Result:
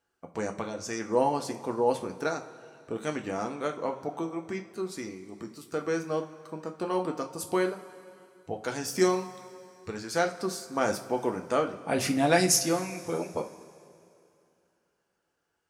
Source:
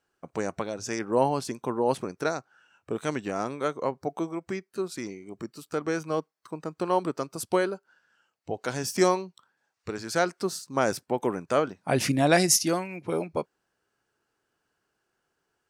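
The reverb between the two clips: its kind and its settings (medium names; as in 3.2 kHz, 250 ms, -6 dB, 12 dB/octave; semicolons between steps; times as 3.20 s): two-slope reverb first 0.27 s, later 2.7 s, from -19 dB, DRR 3 dB; trim -3.5 dB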